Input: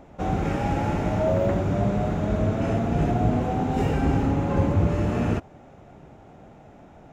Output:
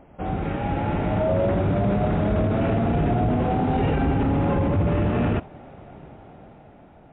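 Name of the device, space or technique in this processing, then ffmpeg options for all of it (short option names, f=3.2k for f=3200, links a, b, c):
low-bitrate web radio: -af "dynaudnorm=f=270:g=9:m=9dB,alimiter=limit=-12.5dB:level=0:latency=1:release=13,volume=-1.5dB" -ar 8000 -c:a libmp3lame -b:a 40k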